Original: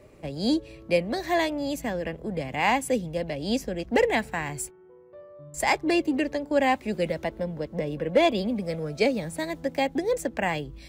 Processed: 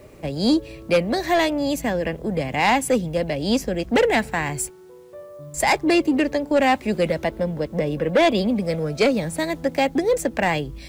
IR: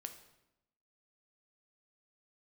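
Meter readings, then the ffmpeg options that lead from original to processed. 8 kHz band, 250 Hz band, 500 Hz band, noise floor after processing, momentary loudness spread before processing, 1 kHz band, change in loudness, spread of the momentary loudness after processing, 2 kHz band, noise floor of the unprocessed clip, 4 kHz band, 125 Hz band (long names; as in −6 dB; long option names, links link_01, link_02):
+6.5 dB, +6.0 dB, +5.0 dB, −44 dBFS, 9 LU, +5.0 dB, +5.5 dB, 7 LU, +5.0 dB, −51 dBFS, +5.5 dB, +6.5 dB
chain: -af "aeval=exprs='0.266*sin(PI/2*1.41*val(0)/0.266)':channel_layout=same,acrusher=bits=9:mix=0:aa=0.000001"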